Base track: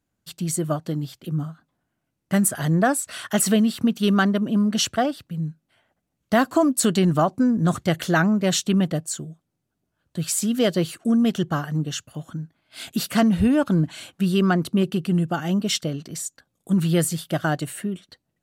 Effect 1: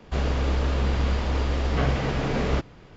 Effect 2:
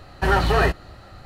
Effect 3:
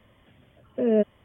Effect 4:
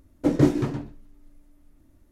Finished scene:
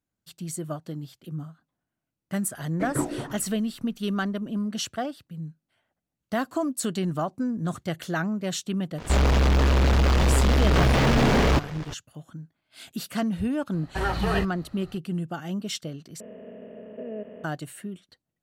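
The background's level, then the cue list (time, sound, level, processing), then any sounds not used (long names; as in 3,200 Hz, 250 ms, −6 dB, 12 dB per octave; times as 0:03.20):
base track −8.5 dB
0:02.56: mix in 4 −10 dB + auto-filter bell 1.7 Hz 550–2,200 Hz +16 dB
0:08.98: mix in 1 −5.5 dB + leveller curve on the samples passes 5
0:13.73: mix in 2 −8 dB
0:16.20: overwrite with 3 −17 dB + compressor on every frequency bin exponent 0.2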